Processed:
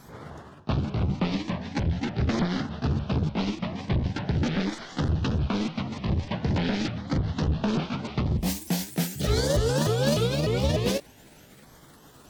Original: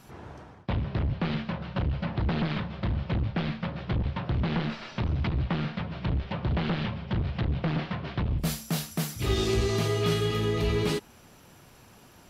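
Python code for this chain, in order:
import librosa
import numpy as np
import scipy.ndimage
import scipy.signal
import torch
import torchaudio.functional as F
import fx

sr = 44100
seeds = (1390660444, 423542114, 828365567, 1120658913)

y = fx.pitch_ramps(x, sr, semitones=7.5, every_ms=299)
y = fx.filter_lfo_notch(y, sr, shape='saw_down', hz=0.43, low_hz=980.0, high_hz=2800.0, q=2.8)
y = F.gain(torch.from_numpy(y), 3.5).numpy()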